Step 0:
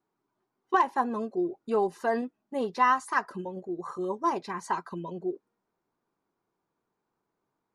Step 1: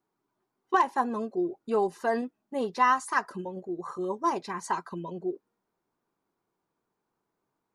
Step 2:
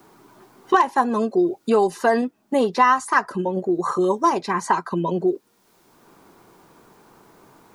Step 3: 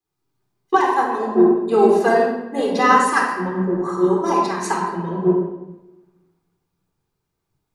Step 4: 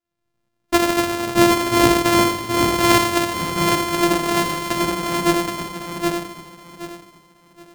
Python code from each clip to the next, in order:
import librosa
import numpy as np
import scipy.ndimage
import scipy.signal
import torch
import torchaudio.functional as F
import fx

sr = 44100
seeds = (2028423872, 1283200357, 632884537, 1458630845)

y1 = fx.dynamic_eq(x, sr, hz=8000.0, q=0.76, threshold_db=-51.0, ratio=4.0, max_db=5)
y2 = fx.band_squash(y1, sr, depth_pct=70)
y2 = F.gain(torch.from_numpy(y2), 9.0).numpy()
y3 = fx.room_shoebox(y2, sr, seeds[0], volume_m3=2800.0, walls='mixed', distance_m=3.9)
y3 = fx.band_widen(y3, sr, depth_pct=100)
y3 = F.gain(torch.from_numpy(y3), -4.5).numpy()
y4 = np.r_[np.sort(y3[:len(y3) // 128 * 128].reshape(-1, 128), axis=1).ravel(), y3[len(y3) // 128 * 128:]]
y4 = fx.echo_feedback(y4, sr, ms=773, feedback_pct=26, wet_db=-4)
y4 = F.gain(torch.from_numpy(y4), -1.0).numpy()